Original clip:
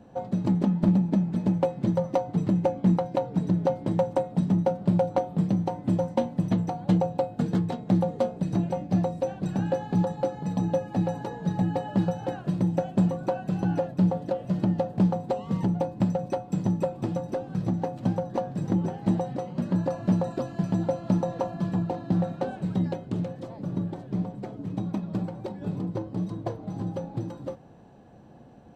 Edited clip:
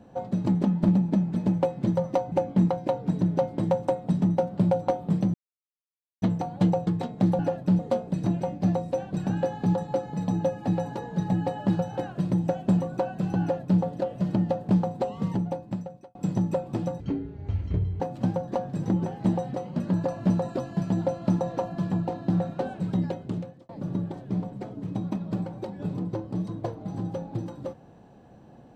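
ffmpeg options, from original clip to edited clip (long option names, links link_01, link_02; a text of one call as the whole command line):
ffmpeg -i in.wav -filter_complex "[0:a]asplit=11[link_01][link_02][link_03][link_04][link_05][link_06][link_07][link_08][link_09][link_10][link_11];[link_01]atrim=end=2.322[link_12];[link_02]atrim=start=2.598:end=5.62,asetpts=PTS-STARTPTS,afade=type=out:start_time=3.018:duration=0.004:curve=hsin[link_13];[link_03]atrim=start=5.62:end=6.5,asetpts=PTS-STARTPTS,volume=0[link_14];[link_04]atrim=start=6.5:end=7.152,asetpts=PTS-STARTPTS,afade=type=in:duration=0.004:curve=hsin[link_15];[link_05]atrim=start=7.558:end=8.082[link_16];[link_06]atrim=start=13.698:end=14.102[link_17];[link_07]atrim=start=8.078:end=16.44,asetpts=PTS-STARTPTS,afade=type=out:start_time=7.392:duration=0.97[link_18];[link_08]atrim=start=16.44:end=17.294,asetpts=PTS-STARTPTS,afade=type=in:duration=0.004:curve=hsin[link_19];[link_09]atrim=start=17.29:end=17.82,asetpts=PTS-STARTPTS,asetrate=23373,aresample=44100[link_20];[link_10]atrim=start=17.816:end=23.51,asetpts=PTS-STARTPTS,afade=type=out:start_time=5.254:duration=0.44[link_21];[link_11]atrim=start=23.51,asetpts=PTS-STARTPTS,afade=type=in:duration=0.004:curve=hsin[link_22];[link_13][link_14][link_15]concat=n=3:v=0:a=1[link_23];[link_12][link_23]acrossfade=duration=0.004:curve1=hsin:curve2=hsin[link_24];[link_24][link_16]acrossfade=duration=0.004:curve1=hsin:curve2=hsin[link_25];[link_25][link_17]acrossfade=duration=0.004:curve1=hsin:curve2=hsin[link_26];[link_18][link_19]concat=n=2:v=0:a=1[link_27];[link_26][link_27]acrossfade=duration=0.004:curve1=hsin:curve2=hsin[link_28];[link_28][link_20]acrossfade=duration=0.004:curve1=hsin:curve2=hsin[link_29];[link_21][link_22]concat=n=2:v=0:a=1[link_30];[link_29][link_30]acrossfade=duration=0.004:curve1=hsin:curve2=hsin" out.wav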